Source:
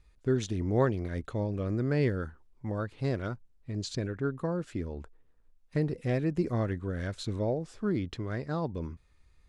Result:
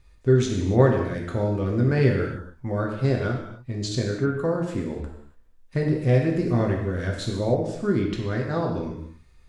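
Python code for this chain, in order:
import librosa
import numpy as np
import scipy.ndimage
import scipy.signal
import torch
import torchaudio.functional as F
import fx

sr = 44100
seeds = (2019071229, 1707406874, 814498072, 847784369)

y = fx.rev_gated(x, sr, seeds[0], gate_ms=320, shape='falling', drr_db=-0.5)
y = F.gain(torch.from_numpy(y), 4.5).numpy()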